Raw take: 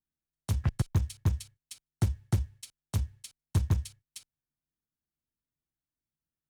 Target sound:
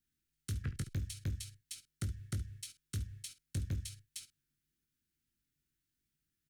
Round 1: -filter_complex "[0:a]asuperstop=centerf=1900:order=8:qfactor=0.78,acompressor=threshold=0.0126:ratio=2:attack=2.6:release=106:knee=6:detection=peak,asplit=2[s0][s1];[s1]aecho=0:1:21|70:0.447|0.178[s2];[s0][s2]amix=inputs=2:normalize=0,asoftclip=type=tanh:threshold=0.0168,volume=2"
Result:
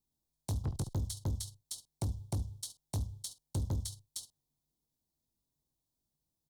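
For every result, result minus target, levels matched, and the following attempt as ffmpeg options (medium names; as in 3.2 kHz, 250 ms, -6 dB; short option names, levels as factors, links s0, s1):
2 kHz band -13.0 dB; compression: peak gain reduction -6 dB
-filter_complex "[0:a]asuperstop=centerf=740:order=8:qfactor=0.78,acompressor=threshold=0.0126:ratio=2:attack=2.6:release=106:knee=6:detection=peak,asplit=2[s0][s1];[s1]aecho=0:1:21|70:0.447|0.178[s2];[s0][s2]amix=inputs=2:normalize=0,asoftclip=type=tanh:threshold=0.0168,volume=2"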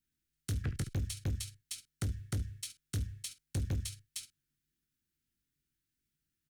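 compression: peak gain reduction -6 dB
-filter_complex "[0:a]asuperstop=centerf=740:order=8:qfactor=0.78,acompressor=threshold=0.00316:ratio=2:attack=2.6:release=106:knee=6:detection=peak,asplit=2[s0][s1];[s1]aecho=0:1:21|70:0.447|0.178[s2];[s0][s2]amix=inputs=2:normalize=0,asoftclip=type=tanh:threshold=0.0168,volume=2"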